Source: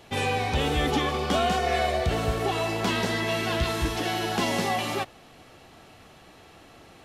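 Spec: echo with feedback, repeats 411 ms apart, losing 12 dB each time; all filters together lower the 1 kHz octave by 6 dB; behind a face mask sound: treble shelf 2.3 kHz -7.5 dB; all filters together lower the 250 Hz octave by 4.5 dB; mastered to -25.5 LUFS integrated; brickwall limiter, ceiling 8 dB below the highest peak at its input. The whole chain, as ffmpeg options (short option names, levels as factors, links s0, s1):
-af "equalizer=f=250:t=o:g=-5.5,equalizer=f=1000:t=o:g=-7.5,alimiter=limit=0.0708:level=0:latency=1,highshelf=f=2300:g=-7.5,aecho=1:1:411|822|1233:0.251|0.0628|0.0157,volume=2.51"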